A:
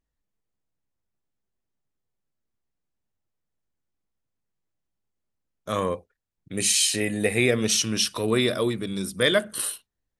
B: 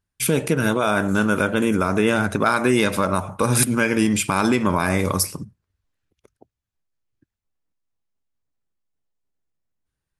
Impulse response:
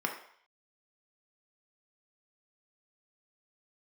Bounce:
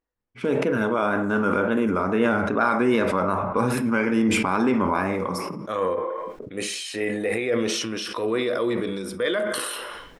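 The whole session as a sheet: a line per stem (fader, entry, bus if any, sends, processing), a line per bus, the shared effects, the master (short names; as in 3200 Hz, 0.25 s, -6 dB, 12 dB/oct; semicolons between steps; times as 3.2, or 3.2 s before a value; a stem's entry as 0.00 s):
+0.5 dB, 0.00 s, send -9.5 dB, low shelf 420 Hz -9.5 dB; small resonant body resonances 340/490 Hz, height 8 dB, ringing for 85 ms; limiter -17 dBFS, peak gain reduction 8.5 dB
-7.0 dB, 0.15 s, send -5 dB, wow and flutter 65 cents; low-pass opened by the level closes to 490 Hz, open at -16 dBFS; auto duck -14 dB, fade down 0.65 s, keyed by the first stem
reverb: on, RT60 0.60 s, pre-delay 3 ms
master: LPF 1400 Hz 6 dB/oct; sustainer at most 25 dB/s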